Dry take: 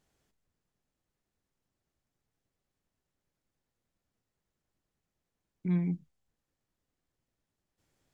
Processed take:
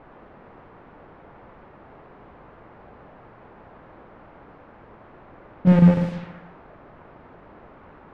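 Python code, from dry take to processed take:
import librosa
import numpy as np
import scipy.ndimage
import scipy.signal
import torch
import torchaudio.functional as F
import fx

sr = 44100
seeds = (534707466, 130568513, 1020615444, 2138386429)

p1 = fx.peak_eq(x, sr, hz=170.0, db=11.0, octaves=1.4)
p2 = fx.leveller(p1, sr, passes=5)
p3 = fx.peak_eq(p2, sr, hz=1100.0, db=-10.5, octaves=1.4)
p4 = p3 + fx.echo_feedback(p3, sr, ms=70, feedback_pct=57, wet_db=-4.0, dry=0)
p5 = fx.chopper(p4, sr, hz=6.7, depth_pct=60, duty_pct=80)
p6 = fx.quant_dither(p5, sr, seeds[0], bits=6, dither='triangular')
p7 = scipy.signal.sosfilt(scipy.signal.butter(2, 2100.0, 'lowpass', fs=sr, output='sos'), p6)
p8 = fx.env_lowpass(p7, sr, base_hz=800.0, full_db=-18.0)
y = p8 * librosa.db_to_amplitude(2.0)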